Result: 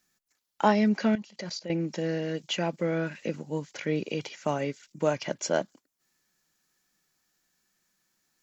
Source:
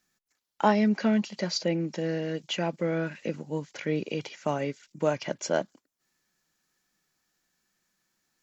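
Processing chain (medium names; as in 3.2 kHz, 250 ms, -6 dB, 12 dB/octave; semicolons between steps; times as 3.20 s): treble shelf 5.6 kHz +4 dB; 1.15–1.70 s: level held to a coarse grid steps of 18 dB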